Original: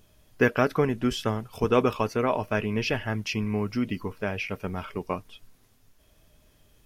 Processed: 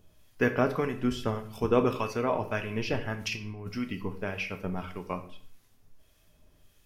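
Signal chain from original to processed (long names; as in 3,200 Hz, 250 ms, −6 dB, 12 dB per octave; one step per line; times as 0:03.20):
0:03.14–0:03.69: compressor whose output falls as the input rises −32 dBFS, ratio −0.5
two-band tremolo in antiphase 1.7 Hz, depth 50%, crossover 1,100 Hz
on a send: convolution reverb RT60 0.50 s, pre-delay 3 ms, DRR 7 dB
on the sum: level −2 dB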